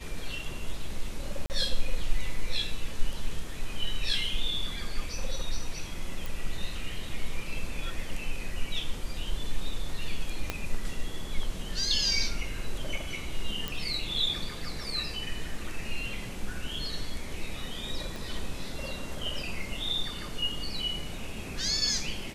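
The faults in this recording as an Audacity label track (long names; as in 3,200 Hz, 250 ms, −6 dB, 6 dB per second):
1.460000	1.500000	drop-out 39 ms
6.260000	6.260000	click
10.500000	10.500000	click −14 dBFS
13.680000	13.680000	click
18.160000	18.160000	click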